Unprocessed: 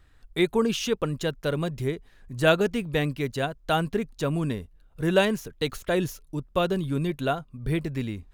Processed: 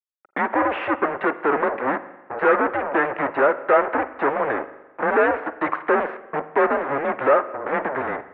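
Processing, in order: fuzz box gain 40 dB, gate -40 dBFS; spring tank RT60 1.1 s, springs 40/50 ms, chirp 50 ms, DRR 13.5 dB; mistuned SSB -140 Hz 600–2000 Hz; trim +3 dB

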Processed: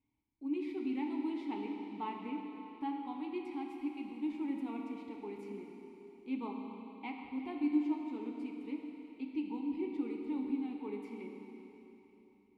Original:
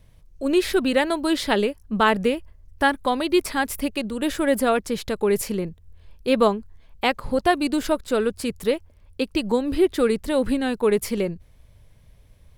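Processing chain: vowel filter u; comb of notches 170 Hz; Schroeder reverb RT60 3.6 s, combs from 27 ms, DRR 1.5 dB; trim -8 dB

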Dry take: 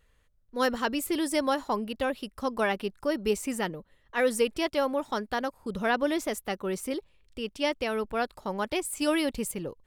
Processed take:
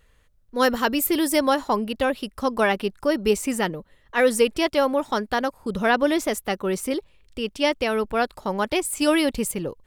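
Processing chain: 0.66–1.39 s: peaking EQ 14 kHz +14 dB 0.26 oct; trim +6.5 dB

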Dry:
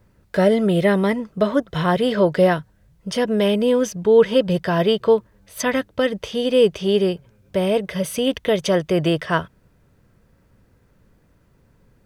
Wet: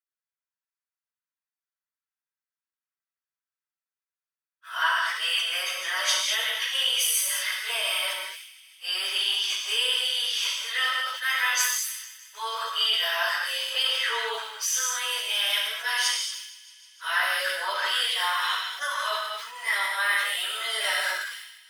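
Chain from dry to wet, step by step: reverse the whole clip; high-pass 1.1 kHz 24 dB/octave; gate -55 dBFS, range -39 dB; tilt EQ +2 dB/octave; compression 2:1, threshold -34 dBFS, peak gain reduction 9.5 dB; plain phase-vocoder stretch 1.8×; feedback echo behind a high-pass 155 ms, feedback 77%, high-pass 2.5 kHz, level -20 dB; gated-style reverb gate 250 ms flat, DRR -0.5 dB; decay stretcher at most 53 dB/s; trim +7 dB

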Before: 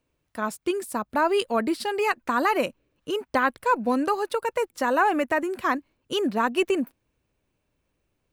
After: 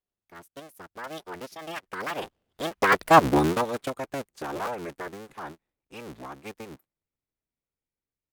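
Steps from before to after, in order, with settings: cycle switcher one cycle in 3, inverted; Doppler pass-by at 3.12 s, 54 m/s, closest 9.2 m; trim +7 dB

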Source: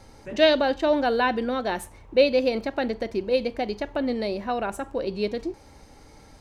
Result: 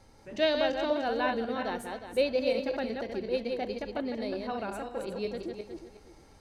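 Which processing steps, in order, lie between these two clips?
backward echo that repeats 181 ms, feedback 46%, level -4 dB; trim -8.5 dB

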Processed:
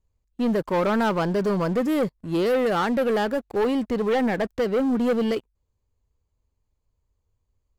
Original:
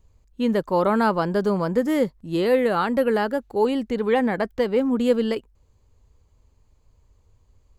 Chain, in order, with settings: waveshaping leveller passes 3; trim -9 dB

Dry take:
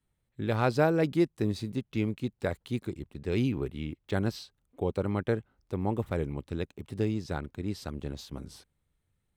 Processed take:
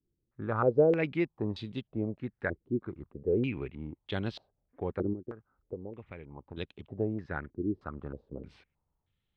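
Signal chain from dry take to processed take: 5.13–6.57 s: compression 12:1, threshold -37 dBFS, peak gain reduction 15.5 dB; step-sequenced low-pass 3.2 Hz 350–3300 Hz; trim -5 dB

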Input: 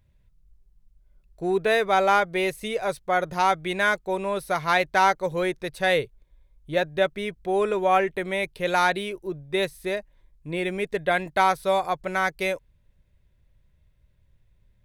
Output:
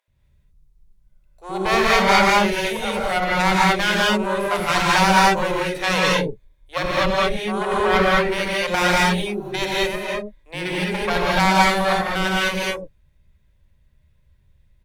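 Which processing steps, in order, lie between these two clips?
Chebyshev shaper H 4 -7 dB, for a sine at -7.5 dBFS; bands offset in time highs, lows 80 ms, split 510 Hz; gated-style reverb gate 240 ms rising, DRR -4.5 dB; trim -1.5 dB

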